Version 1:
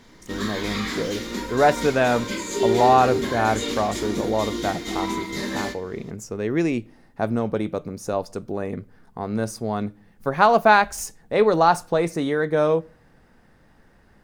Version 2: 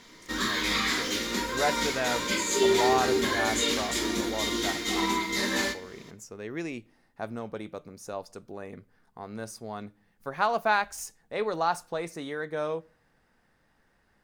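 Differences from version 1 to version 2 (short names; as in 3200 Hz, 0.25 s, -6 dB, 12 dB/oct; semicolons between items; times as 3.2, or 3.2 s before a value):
speech -11.0 dB; master: add tilt shelf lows -4 dB, about 650 Hz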